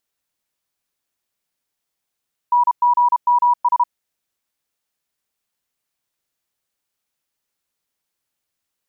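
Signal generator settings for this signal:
Morse code "NGMS" 32 words per minute 970 Hz −11 dBFS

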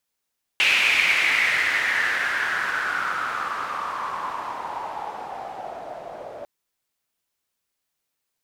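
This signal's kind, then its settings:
filter sweep on noise pink, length 5.85 s bandpass, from 2,600 Hz, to 600 Hz, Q 5.5, exponential, gain ramp −19 dB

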